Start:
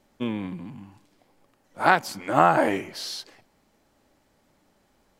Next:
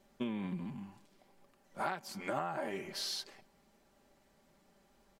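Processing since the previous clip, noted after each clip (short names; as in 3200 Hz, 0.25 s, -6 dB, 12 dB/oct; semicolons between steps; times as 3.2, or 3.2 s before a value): comb 5.1 ms, depth 49%; compressor 12:1, threshold -29 dBFS, peak gain reduction 18 dB; gain -4.5 dB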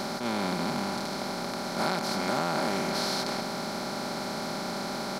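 per-bin compression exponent 0.2; attack slew limiter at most 110 dB/s; gain +2 dB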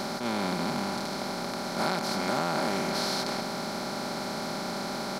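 nothing audible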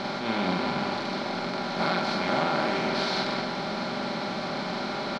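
synth low-pass 3300 Hz, resonance Q 1.5; on a send: loudspeakers at several distances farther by 15 m -3 dB, 59 m -10 dB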